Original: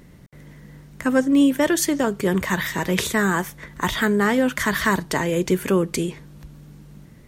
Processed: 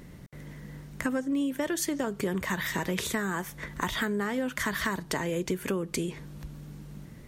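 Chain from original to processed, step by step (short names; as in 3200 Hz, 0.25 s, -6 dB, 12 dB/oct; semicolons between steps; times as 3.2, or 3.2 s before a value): compressor, threshold -27 dBFS, peak gain reduction 14 dB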